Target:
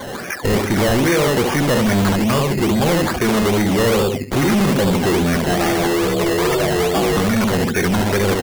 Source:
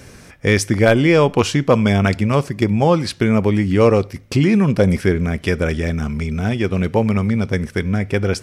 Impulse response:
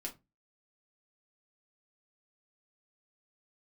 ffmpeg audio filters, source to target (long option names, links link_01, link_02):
-filter_complex "[0:a]asettb=1/sr,asplit=3[link_01][link_02][link_03];[link_01]atrim=end=5.454[link_04];[link_02]atrim=start=5.45:end=7.17,asetpts=PTS-STARTPTS,afade=type=in:duration=0.004:curve=qsin,afade=type=out:start_time=1.716:duration=0.004:curve=qsin,aeval=exprs='val(0)*sin(2*PI*260*n/s)':channel_layout=same[link_05];[link_03]atrim=start=7.166[link_06];[link_04][link_05]acrossfade=duration=0.004:curve1=hsin:curve2=qsin[link_07];[link_07][link_06]acrossfade=duration=0.004:curve1=qsin:curve2=hsin,asplit=2[link_08][link_09];[1:a]atrim=start_sample=2205[link_10];[link_09][link_10]afir=irnorm=-1:irlink=0,volume=-12.5dB[link_11];[link_08][link_11]amix=inputs=2:normalize=0,acrossover=split=400|3000[link_12][link_13][link_14];[link_13]acompressor=threshold=-28dB:ratio=6[link_15];[link_12][link_15][link_14]amix=inputs=3:normalize=0,asplit=2[link_16][link_17];[link_17]adelay=70,lowpass=frequency=2700:poles=1,volume=-4.5dB,asplit=2[link_18][link_19];[link_19]adelay=70,lowpass=frequency=2700:poles=1,volume=0.26,asplit=2[link_20][link_21];[link_21]adelay=70,lowpass=frequency=2700:poles=1,volume=0.26,asplit=2[link_22][link_23];[link_23]adelay=70,lowpass=frequency=2700:poles=1,volume=0.26[link_24];[link_16][link_18][link_20][link_22][link_24]amix=inputs=5:normalize=0,asplit=2[link_25][link_26];[link_26]highpass=frequency=720:poles=1,volume=33dB,asoftclip=type=tanh:threshold=-3.5dB[link_27];[link_25][link_27]amix=inputs=2:normalize=0,lowpass=frequency=1200:poles=1,volume=-6dB,afftdn=noise_reduction=17:noise_floor=-21,tiltshelf=frequency=1400:gain=-6.5,acrusher=samples=15:mix=1:aa=0.000001:lfo=1:lforange=9:lforate=2.4"